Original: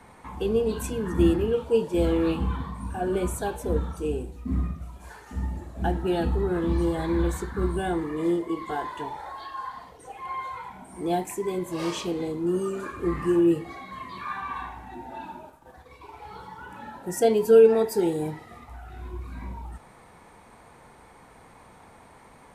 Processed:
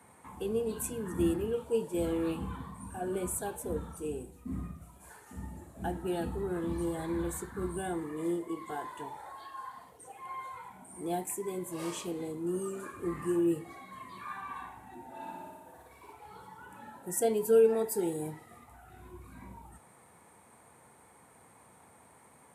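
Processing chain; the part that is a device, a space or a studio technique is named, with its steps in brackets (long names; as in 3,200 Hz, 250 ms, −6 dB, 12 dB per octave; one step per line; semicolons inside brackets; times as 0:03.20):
0:15.10–0:16.13: flutter between parallel walls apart 10 metres, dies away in 1.3 s
budget condenser microphone (high-pass filter 78 Hz 24 dB per octave; high shelf with overshoot 6,800 Hz +8.5 dB, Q 1.5)
level −8 dB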